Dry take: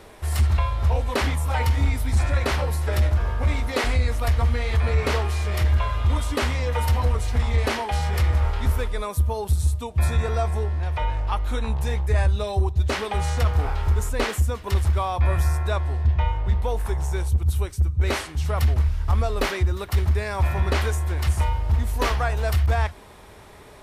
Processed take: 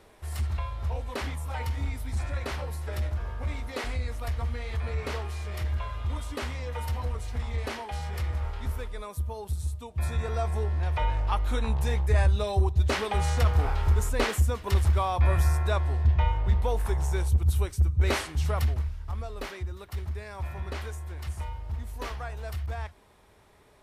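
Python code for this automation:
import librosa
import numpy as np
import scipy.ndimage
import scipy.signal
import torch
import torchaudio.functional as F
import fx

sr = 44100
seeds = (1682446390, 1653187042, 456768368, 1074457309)

y = fx.gain(x, sr, db=fx.line((9.83, -10.0), (10.82, -2.0), (18.46, -2.0), (19.01, -13.0)))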